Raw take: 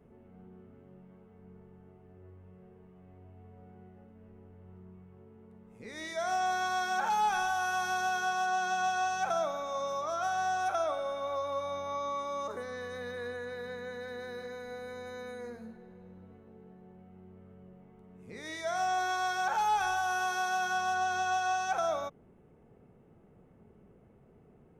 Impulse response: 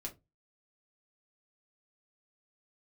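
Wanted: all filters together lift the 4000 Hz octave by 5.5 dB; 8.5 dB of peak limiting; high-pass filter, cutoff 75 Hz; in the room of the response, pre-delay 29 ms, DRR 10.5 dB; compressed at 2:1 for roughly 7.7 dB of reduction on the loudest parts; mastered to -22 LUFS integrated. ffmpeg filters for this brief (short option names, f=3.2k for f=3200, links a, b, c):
-filter_complex "[0:a]highpass=75,equalizer=f=4k:t=o:g=7,acompressor=threshold=-40dB:ratio=2,alimiter=level_in=11.5dB:limit=-24dB:level=0:latency=1,volume=-11.5dB,asplit=2[a][b];[1:a]atrim=start_sample=2205,adelay=29[c];[b][c]afir=irnorm=-1:irlink=0,volume=-8dB[d];[a][d]amix=inputs=2:normalize=0,volume=22dB"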